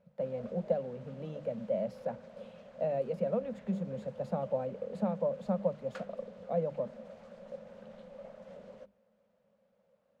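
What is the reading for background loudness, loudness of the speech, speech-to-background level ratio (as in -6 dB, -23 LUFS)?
-50.5 LUFS, -36.0 LUFS, 14.5 dB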